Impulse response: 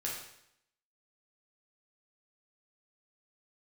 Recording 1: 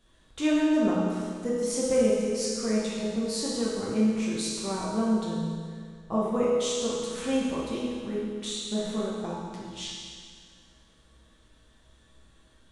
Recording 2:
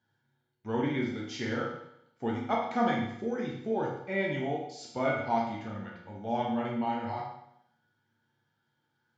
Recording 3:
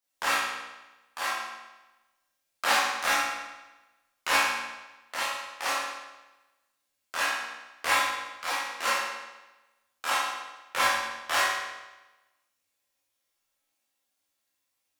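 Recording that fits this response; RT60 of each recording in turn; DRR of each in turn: 2; 2.0 s, 0.75 s, 1.1 s; -7.0 dB, -4.0 dB, -9.5 dB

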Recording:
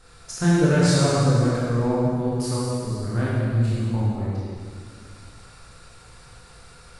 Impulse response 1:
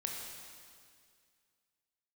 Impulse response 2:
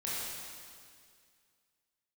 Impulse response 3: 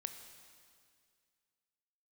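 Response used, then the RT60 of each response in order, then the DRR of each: 2; 2.1 s, 2.1 s, 2.1 s; -0.5 dB, -8.5 dB, 7.5 dB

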